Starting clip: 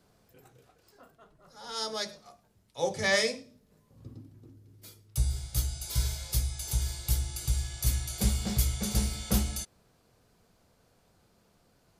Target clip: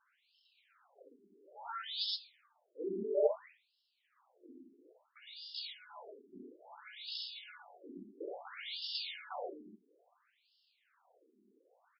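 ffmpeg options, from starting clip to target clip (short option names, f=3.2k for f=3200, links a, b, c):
-af "aecho=1:1:64.14|116.6:0.708|0.794,afftfilt=real='re*between(b*sr/1024,290*pow(3900/290,0.5+0.5*sin(2*PI*0.59*pts/sr))/1.41,290*pow(3900/290,0.5+0.5*sin(2*PI*0.59*pts/sr))*1.41)':imag='im*between(b*sr/1024,290*pow(3900/290,0.5+0.5*sin(2*PI*0.59*pts/sr))/1.41,290*pow(3900/290,0.5+0.5*sin(2*PI*0.59*pts/sr))*1.41)':win_size=1024:overlap=0.75"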